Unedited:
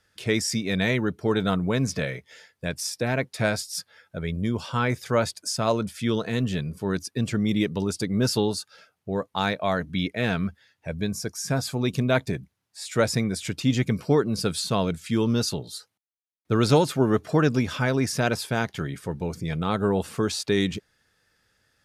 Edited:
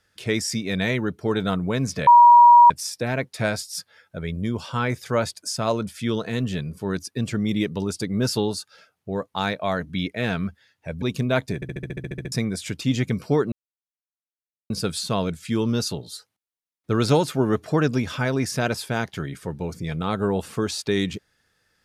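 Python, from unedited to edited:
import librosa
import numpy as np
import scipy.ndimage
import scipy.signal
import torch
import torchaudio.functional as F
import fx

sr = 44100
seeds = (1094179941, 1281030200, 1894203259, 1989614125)

y = fx.edit(x, sr, fx.bleep(start_s=2.07, length_s=0.63, hz=957.0, db=-7.0),
    fx.cut(start_s=11.02, length_s=0.79),
    fx.stutter_over(start_s=12.34, slice_s=0.07, count=11),
    fx.insert_silence(at_s=14.31, length_s=1.18), tone=tone)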